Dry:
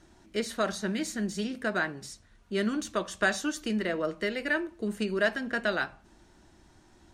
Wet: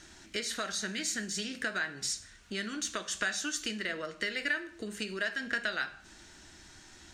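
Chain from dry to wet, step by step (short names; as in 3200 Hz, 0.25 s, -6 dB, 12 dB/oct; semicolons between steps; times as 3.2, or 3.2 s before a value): high shelf 6500 Hz +7 dB; compressor 6:1, threshold -37 dBFS, peak gain reduction 16 dB; band shelf 3300 Hz +10 dB 2.8 oct; plate-style reverb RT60 0.56 s, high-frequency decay 0.95×, DRR 11 dB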